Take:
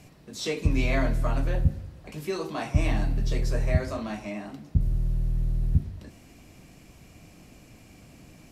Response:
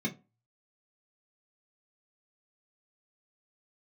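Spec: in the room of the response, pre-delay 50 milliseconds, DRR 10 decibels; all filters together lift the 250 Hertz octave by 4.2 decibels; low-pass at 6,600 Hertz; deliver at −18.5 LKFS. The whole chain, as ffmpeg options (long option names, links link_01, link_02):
-filter_complex "[0:a]lowpass=6600,equalizer=frequency=250:width_type=o:gain=5.5,asplit=2[link_01][link_02];[1:a]atrim=start_sample=2205,adelay=50[link_03];[link_02][link_03]afir=irnorm=-1:irlink=0,volume=-14.5dB[link_04];[link_01][link_04]amix=inputs=2:normalize=0,volume=7.5dB"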